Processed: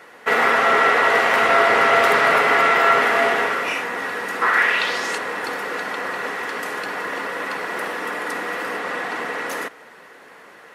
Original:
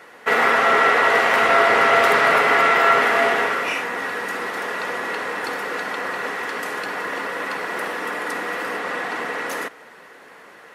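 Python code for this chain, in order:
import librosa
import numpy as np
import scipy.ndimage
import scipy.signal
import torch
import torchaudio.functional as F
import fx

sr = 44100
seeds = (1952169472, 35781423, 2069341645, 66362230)

y = fx.peak_eq(x, sr, hz=fx.line((4.41, 1100.0), (5.17, 8000.0)), db=15.0, octaves=1.3, at=(4.41, 5.17), fade=0.02)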